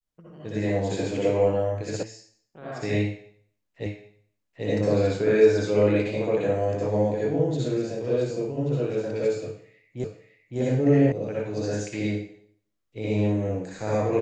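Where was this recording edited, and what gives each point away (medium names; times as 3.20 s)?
2.03 s: sound stops dead
3.86 s: repeat of the last 0.79 s
10.04 s: repeat of the last 0.56 s
11.12 s: sound stops dead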